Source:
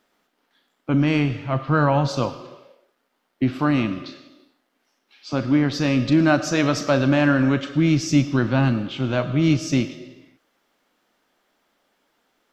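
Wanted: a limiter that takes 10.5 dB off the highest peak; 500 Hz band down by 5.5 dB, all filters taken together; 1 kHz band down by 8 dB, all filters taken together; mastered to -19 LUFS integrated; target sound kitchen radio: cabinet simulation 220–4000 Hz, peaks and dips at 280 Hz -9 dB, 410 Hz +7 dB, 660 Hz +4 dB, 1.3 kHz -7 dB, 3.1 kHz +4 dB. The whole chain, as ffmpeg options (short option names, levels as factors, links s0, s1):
-af "equalizer=f=500:t=o:g=-8.5,equalizer=f=1000:t=o:g=-6.5,alimiter=limit=0.112:level=0:latency=1,highpass=220,equalizer=f=280:t=q:w=4:g=-9,equalizer=f=410:t=q:w=4:g=7,equalizer=f=660:t=q:w=4:g=4,equalizer=f=1300:t=q:w=4:g=-7,equalizer=f=3100:t=q:w=4:g=4,lowpass=f=4000:w=0.5412,lowpass=f=4000:w=1.3066,volume=5.01"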